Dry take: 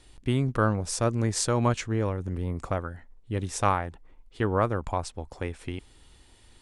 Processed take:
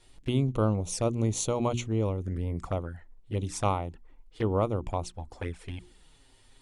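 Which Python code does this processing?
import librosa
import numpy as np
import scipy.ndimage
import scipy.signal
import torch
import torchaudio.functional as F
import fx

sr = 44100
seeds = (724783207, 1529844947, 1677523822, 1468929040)

y = fx.hum_notches(x, sr, base_hz=60, count=6)
y = fx.env_flanger(y, sr, rest_ms=9.3, full_db=-26.0)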